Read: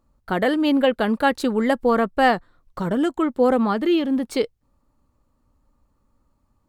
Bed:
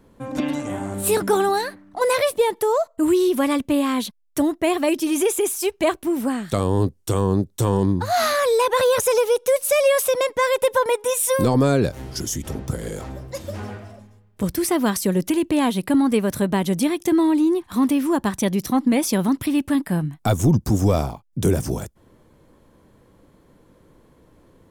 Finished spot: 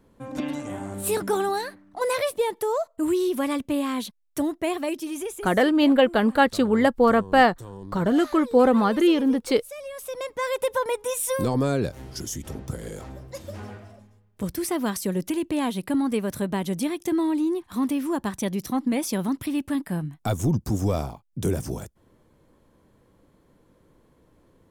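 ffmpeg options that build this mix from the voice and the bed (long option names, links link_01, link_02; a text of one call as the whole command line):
ffmpeg -i stem1.wav -i stem2.wav -filter_complex "[0:a]adelay=5150,volume=0.5dB[link_01];[1:a]volume=9dB,afade=type=out:start_time=4.6:duration=0.99:silence=0.177828,afade=type=in:start_time=9.93:duration=0.66:silence=0.188365[link_02];[link_01][link_02]amix=inputs=2:normalize=0" out.wav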